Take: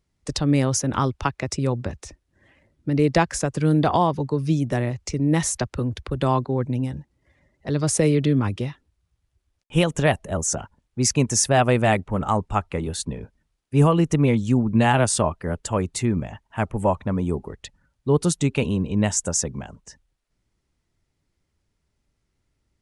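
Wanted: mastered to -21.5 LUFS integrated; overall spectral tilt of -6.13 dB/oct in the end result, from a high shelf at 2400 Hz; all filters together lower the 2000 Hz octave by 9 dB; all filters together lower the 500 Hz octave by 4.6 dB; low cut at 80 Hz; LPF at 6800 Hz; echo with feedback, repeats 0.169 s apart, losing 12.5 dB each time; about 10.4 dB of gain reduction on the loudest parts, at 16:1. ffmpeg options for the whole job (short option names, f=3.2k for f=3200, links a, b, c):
-af "highpass=80,lowpass=6.8k,equalizer=f=500:t=o:g=-5,equalizer=f=2k:t=o:g=-8.5,highshelf=f=2.4k:g=-6,acompressor=threshold=-24dB:ratio=16,aecho=1:1:169|338|507:0.237|0.0569|0.0137,volume=9.5dB"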